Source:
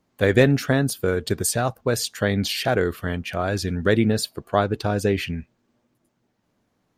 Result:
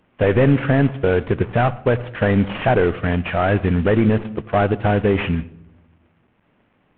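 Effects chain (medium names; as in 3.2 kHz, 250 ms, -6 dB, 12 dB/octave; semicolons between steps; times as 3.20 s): CVSD coder 16 kbps; on a send at -20.5 dB: reverberation RT60 0.75 s, pre-delay 66 ms; on the sum: loudness maximiser +14 dB; trim -5.5 dB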